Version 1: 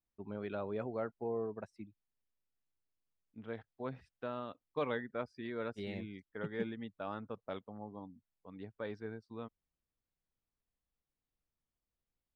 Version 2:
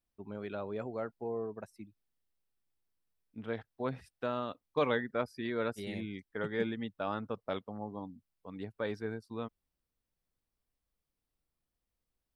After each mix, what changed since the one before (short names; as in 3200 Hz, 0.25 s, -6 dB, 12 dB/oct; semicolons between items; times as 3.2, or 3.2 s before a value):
second voice +5.5 dB; master: remove air absorption 110 m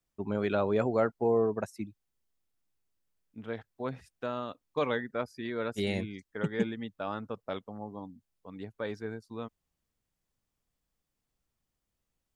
first voice +11.0 dB; master: add bell 6800 Hz +9.5 dB 0.21 oct